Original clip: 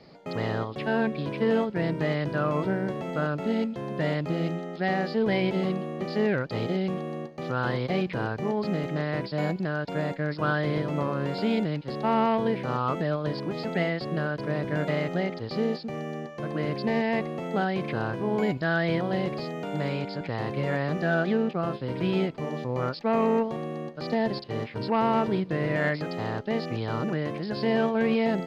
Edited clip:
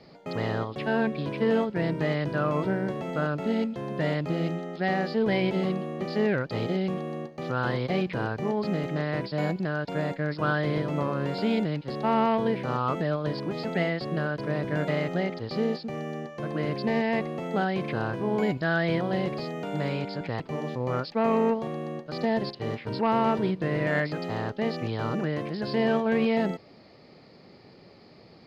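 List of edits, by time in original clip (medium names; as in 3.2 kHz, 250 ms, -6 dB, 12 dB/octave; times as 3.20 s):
20.40–22.29 s: delete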